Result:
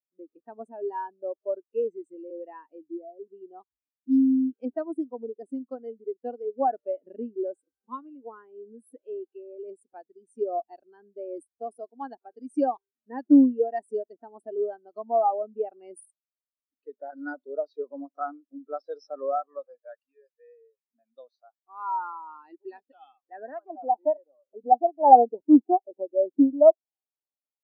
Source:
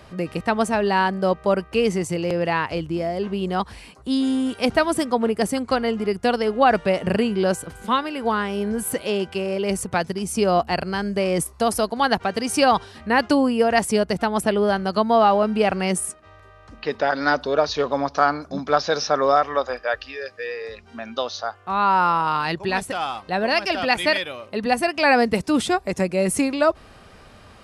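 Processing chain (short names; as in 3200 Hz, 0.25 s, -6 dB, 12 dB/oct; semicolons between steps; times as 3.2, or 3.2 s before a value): resonant low shelf 220 Hz -6.5 dB, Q 3; low-pass sweep 9200 Hz -> 880 Hz, 22.49–23.81; spectral expander 2.5:1; gain -1 dB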